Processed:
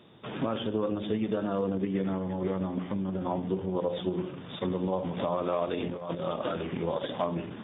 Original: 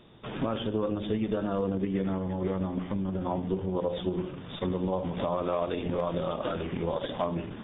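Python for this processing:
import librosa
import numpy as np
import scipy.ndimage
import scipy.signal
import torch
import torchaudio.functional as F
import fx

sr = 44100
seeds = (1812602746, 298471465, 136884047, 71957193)

y = scipy.signal.sosfilt(scipy.signal.butter(2, 110.0, 'highpass', fs=sr, output='sos'), x)
y = fx.over_compress(y, sr, threshold_db=-33.0, ratio=-0.5, at=(5.79, 6.23), fade=0.02)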